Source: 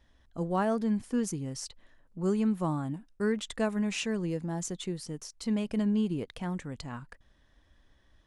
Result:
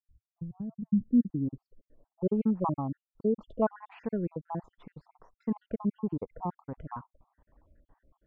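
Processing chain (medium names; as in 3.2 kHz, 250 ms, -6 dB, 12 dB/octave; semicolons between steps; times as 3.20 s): random holes in the spectrogram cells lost 60%; treble shelf 4.1 kHz -10.5 dB; low-pass sweep 110 Hz -> 980 Hz, 0.45–2.64 s; trim +1 dB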